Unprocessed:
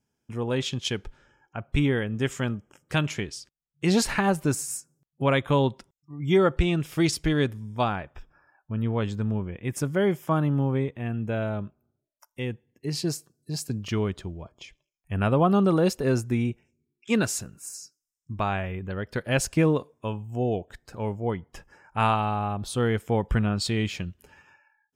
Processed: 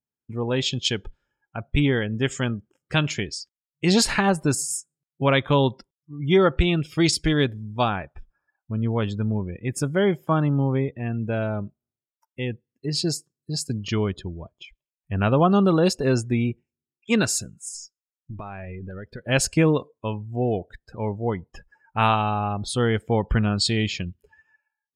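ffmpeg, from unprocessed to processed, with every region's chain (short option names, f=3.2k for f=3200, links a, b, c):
-filter_complex "[0:a]asettb=1/sr,asplit=3[a][b][c];[a]atrim=end=17.744[d];[b]atrim=start=17.74:end=19.24,asetpts=PTS-STARTPTS,afade=t=in:d=0.004:c=qsin,afade=t=out:st=1.496:d=0.004:c=qsin,aeval=exprs='if(lt(val(0),0),0.708*val(0),val(0))':c=same,acompressor=threshold=-33dB:ratio=16:attack=3.2:release=140:knee=1:detection=peak[e];[c]atrim=start=19.236[f];[d][e]acrossfade=d=0.004:c1=hsin:c2=qsin[g];[g][f]acrossfade=d=0.004:c1=qsin:c2=hsin,adynamicequalizer=threshold=0.00562:dfrequency=4800:dqfactor=0.84:tfrequency=4800:tqfactor=0.84:attack=5:release=100:ratio=0.375:range=3:mode=boostabove:tftype=bell,afftdn=nr=20:nf=-43,bandreject=f=5.9k:w=9.9,volume=2.5dB"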